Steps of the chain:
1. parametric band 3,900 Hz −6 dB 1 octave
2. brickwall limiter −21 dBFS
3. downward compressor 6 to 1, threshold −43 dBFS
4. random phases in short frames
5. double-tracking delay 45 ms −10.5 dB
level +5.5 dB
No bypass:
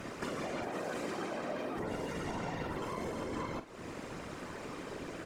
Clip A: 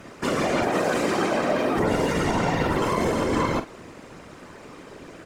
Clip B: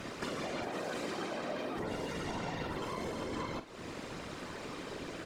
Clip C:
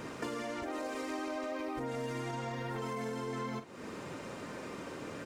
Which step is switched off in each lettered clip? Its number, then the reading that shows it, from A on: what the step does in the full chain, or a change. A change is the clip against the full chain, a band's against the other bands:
3, average gain reduction 10.0 dB
1, 4 kHz band +4.5 dB
4, change in crest factor −3.0 dB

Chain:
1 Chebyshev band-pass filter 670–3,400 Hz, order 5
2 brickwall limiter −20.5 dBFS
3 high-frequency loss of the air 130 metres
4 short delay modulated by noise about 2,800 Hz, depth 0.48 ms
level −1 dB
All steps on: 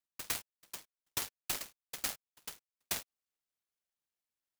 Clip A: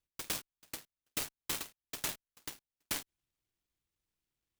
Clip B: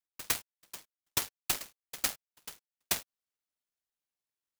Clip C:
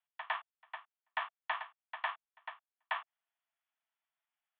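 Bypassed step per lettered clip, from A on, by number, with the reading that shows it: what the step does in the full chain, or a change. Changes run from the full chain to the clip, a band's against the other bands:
1, 250 Hz band +4.0 dB
2, change in crest factor +2.5 dB
4, 4 kHz band −13.0 dB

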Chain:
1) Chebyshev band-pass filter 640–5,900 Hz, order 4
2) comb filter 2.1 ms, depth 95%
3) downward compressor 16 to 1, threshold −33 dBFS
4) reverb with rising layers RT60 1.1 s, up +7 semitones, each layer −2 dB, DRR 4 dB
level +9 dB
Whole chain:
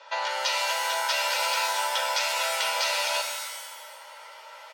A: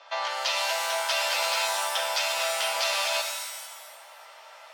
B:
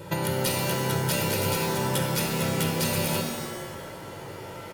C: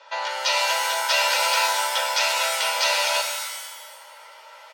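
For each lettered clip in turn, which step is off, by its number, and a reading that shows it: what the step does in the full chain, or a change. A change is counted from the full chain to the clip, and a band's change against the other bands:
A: 2, change in momentary loudness spread −7 LU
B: 1, 500 Hz band +9.0 dB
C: 3, average gain reduction 2.5 dB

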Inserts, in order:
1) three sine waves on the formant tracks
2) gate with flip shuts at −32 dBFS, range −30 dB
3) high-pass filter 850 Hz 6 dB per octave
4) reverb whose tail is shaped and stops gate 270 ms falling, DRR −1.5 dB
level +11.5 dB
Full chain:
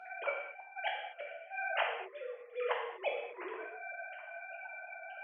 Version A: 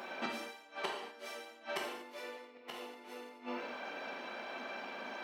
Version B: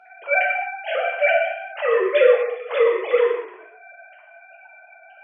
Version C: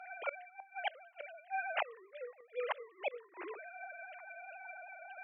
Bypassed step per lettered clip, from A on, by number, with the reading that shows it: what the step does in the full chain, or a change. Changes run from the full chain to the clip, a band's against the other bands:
1, 250 Hz band +15.0 dB
2, change in crest factor −5.0 dB
4, change in integrated loudness −3.5 LU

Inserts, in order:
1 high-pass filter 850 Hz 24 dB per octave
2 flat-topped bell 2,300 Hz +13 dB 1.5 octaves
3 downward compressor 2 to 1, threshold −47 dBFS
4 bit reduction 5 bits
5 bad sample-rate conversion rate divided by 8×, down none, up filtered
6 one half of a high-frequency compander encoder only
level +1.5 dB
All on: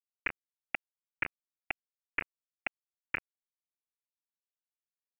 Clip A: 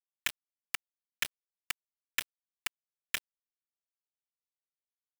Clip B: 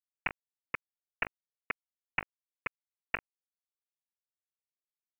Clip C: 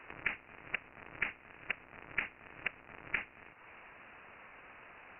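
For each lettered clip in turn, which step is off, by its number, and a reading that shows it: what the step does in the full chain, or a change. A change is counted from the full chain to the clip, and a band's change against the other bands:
5, 2 kHz band +5.5 dB
1, 250 Hz band −3.0 dB
4, distortion level −2 dB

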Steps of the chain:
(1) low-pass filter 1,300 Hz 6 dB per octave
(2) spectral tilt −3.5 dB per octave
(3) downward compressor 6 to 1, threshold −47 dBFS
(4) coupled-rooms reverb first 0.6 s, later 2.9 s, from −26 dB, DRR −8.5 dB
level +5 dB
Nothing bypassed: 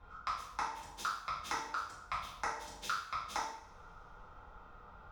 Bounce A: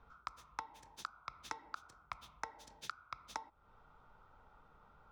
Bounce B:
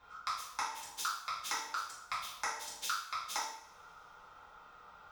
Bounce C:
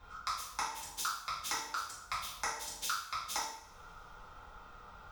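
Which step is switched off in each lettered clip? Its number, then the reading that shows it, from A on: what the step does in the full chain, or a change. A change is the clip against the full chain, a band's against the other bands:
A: 4, change in integrated loudness −9.5 LU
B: 2, 8 kHz band +8.0 dB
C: 1, 8 kHz band +10.5 dB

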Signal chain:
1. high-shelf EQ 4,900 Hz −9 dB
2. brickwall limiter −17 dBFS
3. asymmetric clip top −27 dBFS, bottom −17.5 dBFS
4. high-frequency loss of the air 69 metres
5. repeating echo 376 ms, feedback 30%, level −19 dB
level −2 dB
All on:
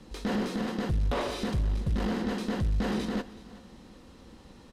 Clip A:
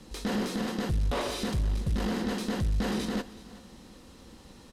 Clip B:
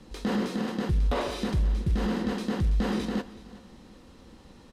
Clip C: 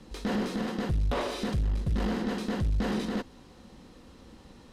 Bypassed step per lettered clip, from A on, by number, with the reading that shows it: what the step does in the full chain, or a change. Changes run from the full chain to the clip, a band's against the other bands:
1, 8 kHz band +6.0 dB
3, distortion level −10 dB
5, change in momentary loudness spread −8 LU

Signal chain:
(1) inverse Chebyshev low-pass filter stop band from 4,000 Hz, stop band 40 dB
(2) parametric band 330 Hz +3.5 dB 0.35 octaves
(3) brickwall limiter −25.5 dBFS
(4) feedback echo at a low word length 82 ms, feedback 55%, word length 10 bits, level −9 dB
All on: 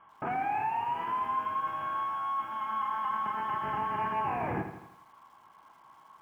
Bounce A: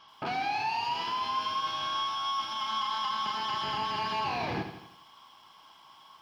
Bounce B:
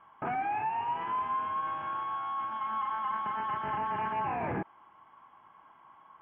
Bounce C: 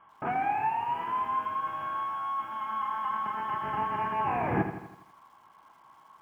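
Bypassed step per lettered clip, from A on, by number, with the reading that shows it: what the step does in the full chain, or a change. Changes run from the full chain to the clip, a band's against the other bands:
1, 2 kHz band +3.0 dB
4, change in crest factor −2.5 dB
3, change in crest factor +6.0 dB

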